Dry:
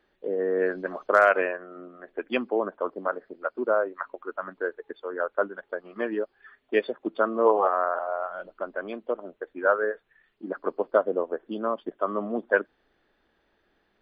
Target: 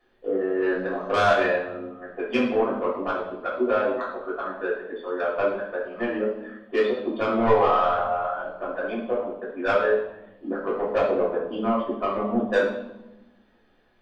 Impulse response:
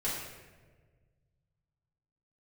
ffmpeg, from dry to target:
-filter_complex "[0:a]asoftclip=type=tanh:threshold=-17.5dB[link_01];[1:a]atrim=start_sample=2205,asetrate=70560,aresample=44100[link_02];[link_01][link_02]afir=irnorm=-1:irlink=0,volume=3dB"

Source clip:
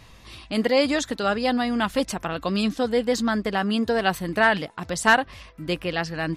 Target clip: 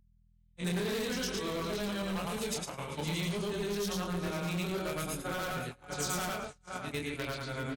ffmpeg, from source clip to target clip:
ffmpeg -i in.wav -filter_complex "[0:a]afftfilt=real='re':imag='-im':win_size=8192:overlap=0.75,aecho=1:1:74|316|422:0.141|0.106|0.251,flanger=delay=19.5:depth=4.3:speed=0.65,agate=range=-53dB:threshold=-35dB:ratio=16:detection=peak,asoftclip=type=hard:threshold=-27.5dB,acrossover=split=420[link_01][link_02];[link_02]acompressor=threshold=-37dB:ratio=3[link_03];[link_01][link_03]amix=inputs=2:normalize=0,adynamicequalizer=threshold=0.00501:dfrequency=250:dqfactor=2:tfrequency=250:tqfactor=2:attack=5:release=100:ratio=0.375:range=2:mode=cutabove:tftype=bell,aeval=exprs='val(0)+0.000631*(sin(2*PI*50*n/s)+sin(2*PI*2*50*n/s)/2+sin(2*PI*3*50*n/s)/3+sin(2*PI*4*50*n/s)/4+sin(2*PI*5*50*n/s)/5)':channel_layout=same,aemphasis=mode=production:type=50fm,asetrate=36162,aresample=44100" out.wav

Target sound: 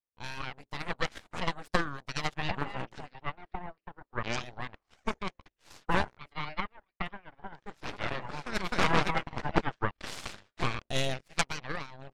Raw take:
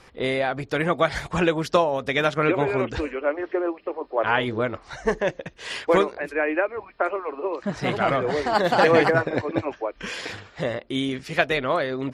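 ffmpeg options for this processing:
ffmpeg -i in.wav -filter_complex "[0:a]agate=range=-18dB:threshold=-46dB:ratio=16:detection=peak,asettb=1/sr,asplit=3[link_01][link_02][link_03];[link_01]atrim=end=9.394[link_04];[link_02]atrim=start=9.39:end=11.21,asetpts=PTS-STARTPTS,afade=type=in:duration=0.004:curve=qsin,afade=type=out:start_time=1.816:duration=0.004:curve=qsin,acontrast=86[link_05];[link_03]atrim=start=11.206[link_06];[link_04][link_05]acrossfade=duration=0.004:curve1=hsin:curve2=qsin[link_07];[link_07][link_06]acrossfade=duration=0.004:curve1=qsin:curve2=hsin,aeval=exprs='0.668*(cos(1*acos(clip(val(0)/0.668,-1,1)))-cos(1*PI/2))+0.266*(cos(3*acos(clip(val(0)/0.668,-1,1)))-cos(3*PI/2))+0.188*(cos(4*acos(clip(val(0)/0.668,-1,1)))-cos(4*PI/2))+0.0376*(cos(5*acos(clip(val(0)/0.668,-1,1)))-cos(5*PI/2))+0.00531*(cos(7*acos(clip(val(0)/0.668,-1,1)))-cos(7*PI/2))':channel_layout=same,volume=-4.5dB" out.wav

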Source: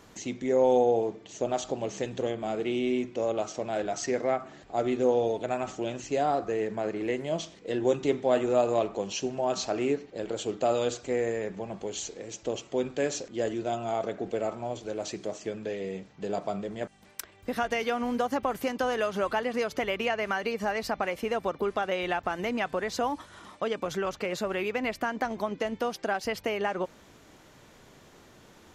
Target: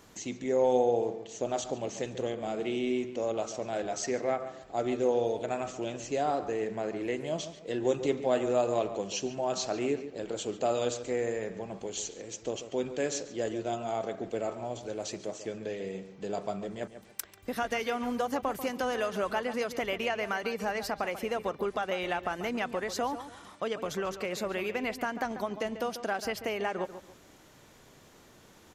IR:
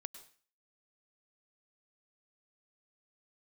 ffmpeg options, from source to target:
-filter_complex "[0:a]highshelf=frequency=6600:gain=6.5,asplit=2[link_01][link_02];[link_02]adelay=141,lowpass=frequency=2800:poles=1,volume=-11.5dB,asplit=2[link_03][link_04];[link_04]adelay=141,lowpass=frequency=2800:poles=1,volume=0.3,asplit=2[link_05][link_06];[link_06]adelay=141,lowpass=frequency=2800:poles=1,volume=0.3[link_07];[link_01][link_03][link_05][link_07]amix=inputs=4:normalize=0,volume=-3dB"

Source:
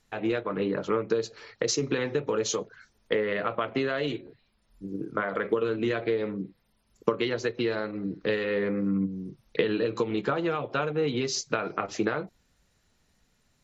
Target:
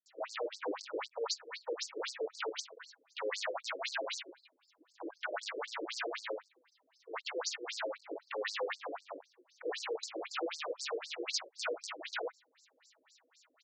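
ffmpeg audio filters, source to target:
ffmpeg -i in.wav -filter_complex "[0:a]lowshelf=frequency=480:gain=-7.5,aecho=1:1:6.2:0.58,asubboost=boost=4.5:cutoff=120,asplit=2[link_01][link_02];[link_02]acompressor=threshold=-43dB:ratio=6,volume=-2dB[link_03];[link_01][link_03]amix=inputs=2:normalize=0,asoftclip=type=tanh:threshold=-27dB,aeval=exprs='val(0)+0.00794*(sin(2*PI*50*n/s)+sin(2*PI*2*50*n/s)/2+sin(2*PI*3*50*n/s)/3+sin(2*PI*4*50*n/s)/4+sin(2*PI*5*50*n/s)/5)':channel_layout=same,aeval=exprs='0.0251*(abs(mod(val(0)/0.0251+3,4)-2)-1)':channel_layout=same,acrossover=split=310[link_04][link_05];[link_05]adelay=60[link_06];[link_04][link_06]amix=inputs=2:normalize=0,afftfilt=real='re*between(b*sr/1024,400*pow(6200/400,0.5+0.5*sin(2*PI*3.9*pts/sr))/1.41,400*pow(6200/400,0.5+0.5*sin(2*PI*3.9*pts/sr))*1.41)':imag='im*between(b*sr/1024,400*pow(6200/400,0.5+0.5*sin(2*PI*3.9*pts/sr))/1.41,400*pow(6200/400,0.5+0.5*sin(2*PI*3.9*pts/sr))*1.41)':win_size=1024:overlap=0.75,volume=6.5dB" out.wav

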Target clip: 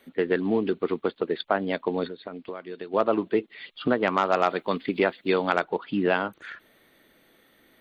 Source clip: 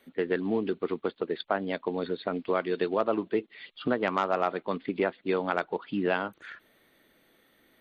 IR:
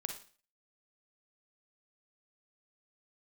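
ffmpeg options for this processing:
-filter_complex "[0:a]asplit=3[link_01][link_02][link_03];[link_01]afade=type=out:start_time=2.07:duration=0.02[link_04];[link_02]acompressor=threshold=-38dB:ratio=6,afade=type=in:start_time=2.07:duration=0.02,afade=type=out:start_time=2.93:duration=0.02[link_05];[link_03]afade=type=in:start_time=2.93:duration=0.02[link_06];[link_04][link_05][link_06]amix=inputs=3:normalize=0,asettb=1/sr,asplit=3[link_07][link_08][link_09];[link_07]atrim=end=4.254[link_10];[link_08]atrim=start=4.25:end=5.59,asetpts=PTS-STARTPTS,afade=type=in:duration=0.004:curve=qsin,afade=type=out:start_time=1.336:duration=0.004:curve=qsin,highshelf=frequency=3700:gain=11.5[link_11];[link_09]atrim=start=5.586[link_12];[link_10][link_11]acrossfade=duration=0.004:curve1=hsin:curve2=qsin[link_13];[link_13][link_12]acrossfade=duration=0.004:curve1=qsin:curve2=hsin,volume=4dB"

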